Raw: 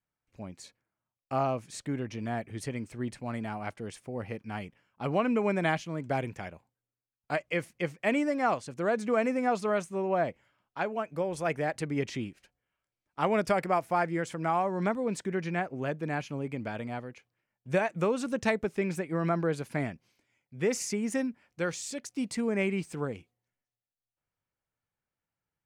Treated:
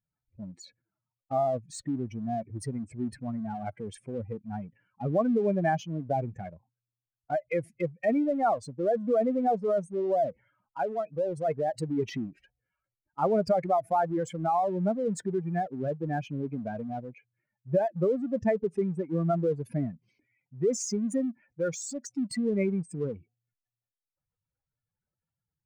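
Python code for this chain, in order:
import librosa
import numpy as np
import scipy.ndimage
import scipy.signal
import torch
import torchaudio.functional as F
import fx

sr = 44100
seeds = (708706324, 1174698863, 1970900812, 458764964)

p1 = fx.spec_expand(x, sr, power=2.6)
p2 = np.sign(p1) * np.maximum(np.abs(p1) - 10.0 ** (-44.5 / 20.0), 0.0)
y = p1 + (p2 * 10.0 ** (-9.0 / 20.0))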